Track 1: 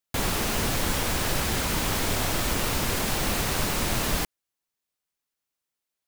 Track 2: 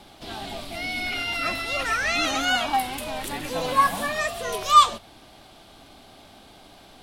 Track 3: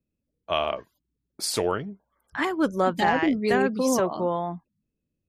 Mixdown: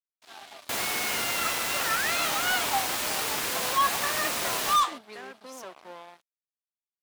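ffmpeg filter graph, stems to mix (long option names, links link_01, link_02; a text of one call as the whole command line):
ffmpeg -i stem1.wav -i stem2.wav -i stem3.wav -filter_complex "[0:a]adelay=550,volume=0.5dB[link_01];[1:a]equalizer=frequency=1100:width_type=o:width=1.5:gain=7,volume=-6.5dB[link_02];[2:a]alimiter=limit=-15.5dB:level=0:latency=1:release=39,adelay=1650,volume=-10dB[link_03];[link_01][link_02][link_03]amix=inputs=3:normalize=0,aeval=exprs='sgn(val(0))*max(abs(val(0))-0.00944,0)':channel_layout=same,highpass=frequency=800:poles=1,asoftclip=type=hard:threshold=-19dB" out.wav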